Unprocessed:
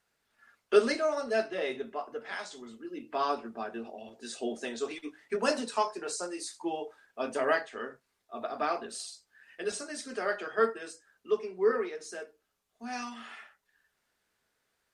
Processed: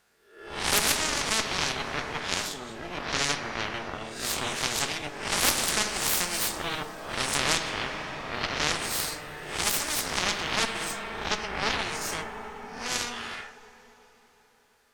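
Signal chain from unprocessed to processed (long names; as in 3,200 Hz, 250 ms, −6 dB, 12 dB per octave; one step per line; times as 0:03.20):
peak hold with a rise ahead of every peak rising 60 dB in 0.56 s
harmonic generator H 3 −29 dB, 5 −16 dB, 6 −10 dB, 7 −11 dB, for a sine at −9 dBFS
coupled-rooms reverb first 0.27 s, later 4.1 s, from −21 dB, DRR 11.5 dB
every bin compressed towards the loudest bin 4 to 1
level +2.5 dB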